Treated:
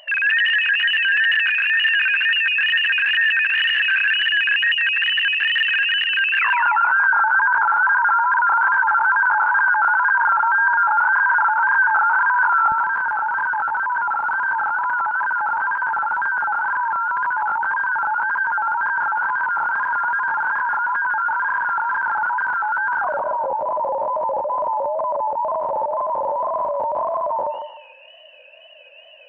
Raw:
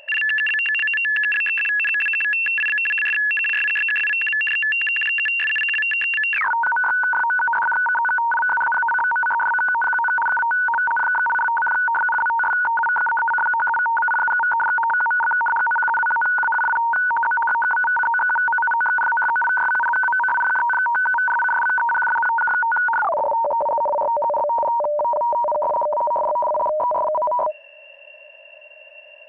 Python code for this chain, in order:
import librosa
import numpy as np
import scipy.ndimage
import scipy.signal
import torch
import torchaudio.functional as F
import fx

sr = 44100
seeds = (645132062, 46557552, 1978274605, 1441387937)

y = fx.peak_eq(x, sr, hz=fx.steps((0.0, 1500.0), (12.71, 180.0)), db=5.5, octaves=1.8)
y = fx.wow_flutter(y, sr, seeds[0], rate_hz=2.1, depth_cents=140.0)
y = fx.echo_thinned(y, sr, ms=152, feedback_pct=38, hz=640.0, wet_db=-4.0)
y = y * 10.0 ** (-3.5 / 20.0)